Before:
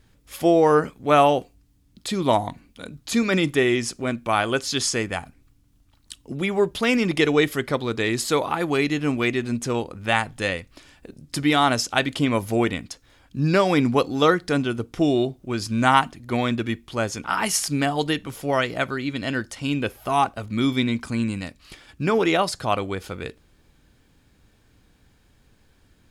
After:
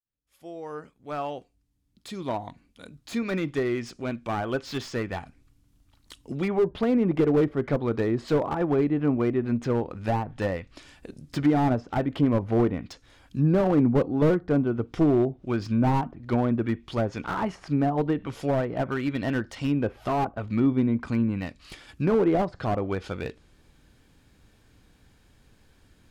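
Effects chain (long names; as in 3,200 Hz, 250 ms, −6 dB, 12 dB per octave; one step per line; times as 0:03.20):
fade in at the beginning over 7.35 s
treble cut that deepens with the level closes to 880 Hz, closed at −19 dBFS
slew-rate limiting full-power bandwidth 57 Hz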